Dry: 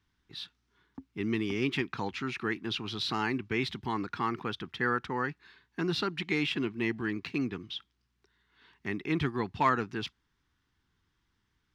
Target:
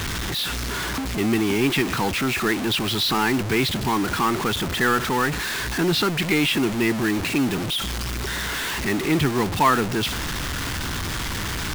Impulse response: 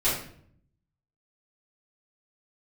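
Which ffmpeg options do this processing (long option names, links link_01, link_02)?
-af "aeval=exprs='val(0)+0.5*0.0355*sgn(val(0))':channel_layout=same,acontrast=68,acrusher=bits=4:mode=log:mix=0:aa=0.000001"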